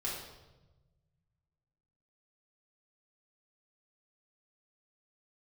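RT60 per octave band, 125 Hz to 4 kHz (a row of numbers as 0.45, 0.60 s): 2.4, 1.6, 1.2, 0.95, 0.85, 0.85 s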